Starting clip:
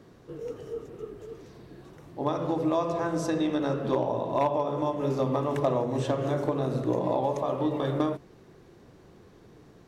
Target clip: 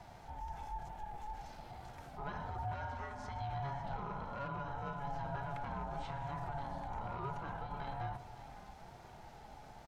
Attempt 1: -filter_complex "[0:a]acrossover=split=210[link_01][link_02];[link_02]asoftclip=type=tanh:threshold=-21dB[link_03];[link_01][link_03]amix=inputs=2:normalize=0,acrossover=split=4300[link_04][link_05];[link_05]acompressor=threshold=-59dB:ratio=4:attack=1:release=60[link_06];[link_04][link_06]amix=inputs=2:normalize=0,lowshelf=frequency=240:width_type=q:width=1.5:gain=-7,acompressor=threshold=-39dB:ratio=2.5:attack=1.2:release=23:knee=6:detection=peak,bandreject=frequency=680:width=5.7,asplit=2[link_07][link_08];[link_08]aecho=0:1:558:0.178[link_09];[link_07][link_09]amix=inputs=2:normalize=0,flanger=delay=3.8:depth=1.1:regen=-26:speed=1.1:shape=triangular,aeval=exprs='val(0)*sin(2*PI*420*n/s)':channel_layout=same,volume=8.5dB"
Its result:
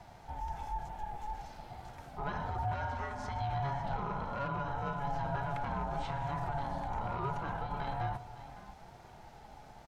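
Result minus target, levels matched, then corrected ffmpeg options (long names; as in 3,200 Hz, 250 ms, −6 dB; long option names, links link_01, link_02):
downward compressor: peak gain reduction −5.5 dB
-filter_complex "[0:a]acrossover=split=210[link_01][link_02];[link_02]asoftclip=type=tanh:threshold=-21dB[link_03];[link_01][link_03]amix=inputs=2:normalize=0,acrossover=split=4300[link_04][link_05];[link_05]acompressor=threshold=-59dB:ratio=4:attack=1:release=60[link_06];[link_04][link_06]amix=inputs=2:normalize=0,lowshelf=frequency=240:width_type=q:width=1.5:gain=-7,acompressor=threshold=-48dB:ratio=2.5:attack=1.2:release=23:knee=6:detection=peak,bandreject=frequency=680:width=5.7,asplit=2[link_07][link_08];[link_08]aecho=0:1:558:0.178[link_09];[link_07][link_09]amix=inputs=2:normalize=0,flanger=delay=3.8:depth=1.1:regen=-26:speed=1.1:shape=triangular,aeval=exprs='val(0)*sin(2*PI*420*n/s)':channel_layout=same,volume=8.5dB"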